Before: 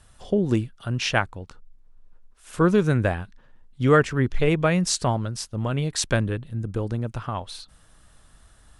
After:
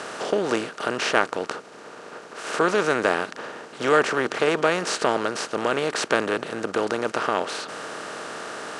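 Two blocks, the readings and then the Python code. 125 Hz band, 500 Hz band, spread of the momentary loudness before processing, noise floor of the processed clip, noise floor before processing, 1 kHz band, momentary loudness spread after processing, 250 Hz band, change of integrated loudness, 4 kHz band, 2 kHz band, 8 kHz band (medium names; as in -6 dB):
-16.0 dB, +2.5 dB, 14 LU, -43 dBFS, -55 dBFS, +5.0 dB, 14 LU, -4.5 dB, -0.5 dB, +2.0 dB, +4.5 dB, -2.0 dB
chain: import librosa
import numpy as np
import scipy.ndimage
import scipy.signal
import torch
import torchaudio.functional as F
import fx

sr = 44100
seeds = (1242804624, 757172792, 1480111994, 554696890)

y = fx.bin_compress(x, sr, power=0.4)
y = scipy.signal.sosfilt(scipy.signal.butter(2, 410.0, 'highpass', fs=sr, output='sos'), y)
y = fx.high_shelf(y, sr, hz=5400.0, db=-10.0)
y = y * librosa.db_to_amplitude(-1.5)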